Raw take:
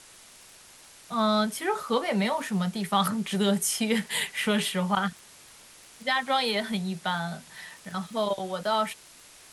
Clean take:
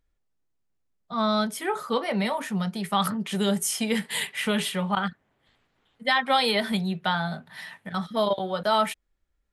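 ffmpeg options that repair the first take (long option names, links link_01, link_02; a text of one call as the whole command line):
ffmpeg -i in.wav -af "adeclick=threshold=4,afwtdn=0.0035,asetnsamples=nb_out_samples=441:pad=0,asendcmd='5.82 volume volume 3.5dB',volume=0dB" out.wav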